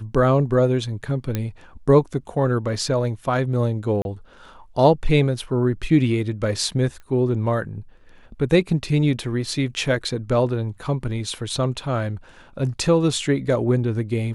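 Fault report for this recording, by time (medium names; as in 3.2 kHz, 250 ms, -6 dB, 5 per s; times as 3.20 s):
1.35 s: pop -10 dBFS
4.02–4.05 s: dropout 31 ms
7.00 s: pop -30 dBFS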